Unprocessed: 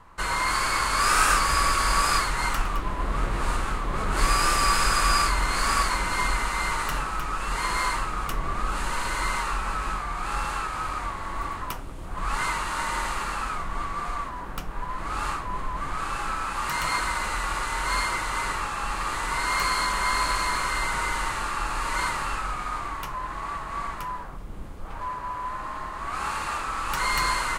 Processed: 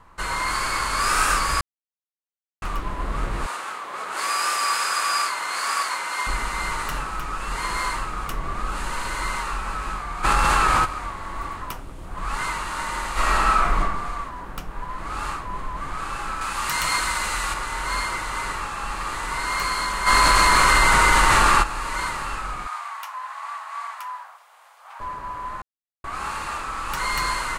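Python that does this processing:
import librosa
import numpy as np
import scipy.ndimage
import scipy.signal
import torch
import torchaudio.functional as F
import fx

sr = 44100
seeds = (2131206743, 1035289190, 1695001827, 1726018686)

y = fx.highpass(x, sr, hz=590.0, slope=12, at=(3.46, 6.27))
y = fx.env_flatten(y, sr, amount_pct=100, at=(10.23, 10.84), fade=0.02)
y = fx.reverb_throw(y, sr, start_s=13.12, length_s=0.67, rt60_s=0.97, drr_db=-9.0)
y = fx.high_shelf(y, sr, hz=2200.0, db=8.0, at=(16.41, 17.54))
y = fx.env_flatten(y, sr, amount_pct=100, at=(20.06, 21.62), fade=0.02)
y = fx.steep_highpass(y, sr, hz=710.0, slope=36, at=(22.67, 25.0))
y = fx.edit(y, sr, fx.silence(start_s=1.61, length_s=1.01),
    fx.silence(start_s=25.62, length_s=0.42), tone=tone)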